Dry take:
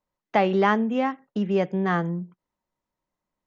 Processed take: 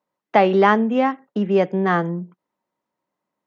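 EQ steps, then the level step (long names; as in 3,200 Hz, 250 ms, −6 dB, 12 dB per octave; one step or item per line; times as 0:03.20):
high-pass filter 200 Hz 12 dB per octave
dynamic equaliser 4,800 Hz, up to +4 dB, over −44 dBFS, Q 0.94
high-shelf EQ 3,200 Hz −9.5 dB
+6.5 dB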